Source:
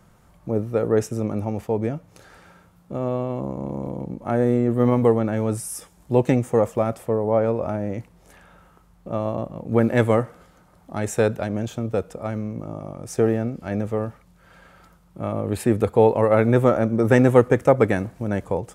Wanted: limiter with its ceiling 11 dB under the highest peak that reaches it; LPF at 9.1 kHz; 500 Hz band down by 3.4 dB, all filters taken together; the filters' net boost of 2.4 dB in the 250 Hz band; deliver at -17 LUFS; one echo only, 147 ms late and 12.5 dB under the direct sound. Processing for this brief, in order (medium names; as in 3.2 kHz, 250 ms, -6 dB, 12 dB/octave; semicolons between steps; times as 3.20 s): low-pass 9.1 kHz; peaking EQ 250 Hz +4 dB; peaking EQ 500 Hz -5 dB; peak limiter -13.5 dBFS; delay 147 ms -12.5 dB; trim +9 dB